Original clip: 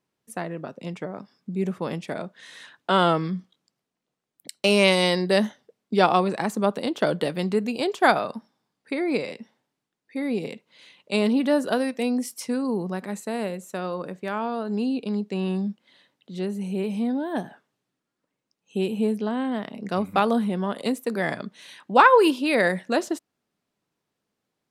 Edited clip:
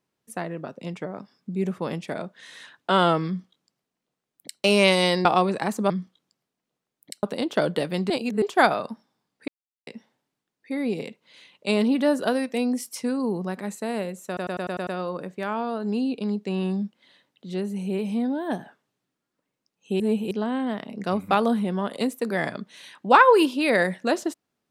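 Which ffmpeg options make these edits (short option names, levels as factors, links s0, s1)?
-filter_complex "[0:a]asplit=16[s0][s1][s2][s3][s4][s5][s6][s7][s8][s9][s10][s11][s12][s13][s14][s15];[s0]atrim=end=5.252[s16];[s1]atrim=start=6.028:end=6.682[s17];[s2]atrim=start=3.268:end=4.602[s18];[s3]atrim=start=6.678:end=7.552[s19];[s4]atrim=start=7.548:end=7.872,asetpts=PTS-STARTPTS,areverse[s20];[s5]atrim=start=7.868:end=8.93,asetpts=PTS-STARTPTS,afade=t=out:st=1.058:d=0.004:c=hsin[s21];[s6]atrim=start=8.93:end=9.32,asetpts=PTS-STARTPTS,volume=0[s22];[s7]atrim=start=9.32:end=13.822,asetpts=PTS-STARTPTS,afade=t=in:d=0.004:c=hsin[s23];[s8]atrim=start=13.718:end=13.822[s24];[s9]atrim=start=13.718:end=13.822[s25];[s10]atrim=start=13.718:end=13.822[s26];[s11]atrim=start=13.718:end=13.822[s27];[s12]atrim=start=13.718:end=13.822[s28];[s13]atrim=start=13.718:end=18.852[s29];[s14]atrim=start=18.848:end=19.162,asetpts=PTS-STARTPTS,areverse[s30];[s15]atrim=start=19.158[s31];[s16][s17]acrossfade=d=0.004:c1=hsin:c2=hsin[s32];[s32][s18]acrossfade=d=0.004:c1=hsin:c2=hsin[s33];[s33][s19]acrossfade=d=0.004:c1=hsin:c2=hsin[s34];[s34][s20]acrossfade=d=0.004:c1=hsin:c2=hsin[s35];[s21][s22][s23]concat=n=3:v=0:a=1[s36];[s35][s36]acrossfade=d=0.004:c1=hsin:c2=hsin[s37];[s37][s24]acrossfade=d=0.004:c1=hsin:c2=hsin[s38];[s38][s25]acrossfade=d=0.004:c1=hsin:c2=hsin[s39];[s39][s26]acrossfade=d=0.004:c1=hsin:c2=hsin[s40];[s40][s27]acrossfade=d=0.004:c1=hsin:c2=hsin[s41];[s41][s28]acrossfade=d=0.004:c1=hsin:c2=hsin[s42];[s42][s29]acrossfade=d=0.004:c1=hsin:c2=hsin[s43];[s43][s30]acrossfade=d=0.004:c1=hsin:c2=hsin[s44];[s44][s31]acrossfade=d=0.004:c1=hsin:c2=hsin"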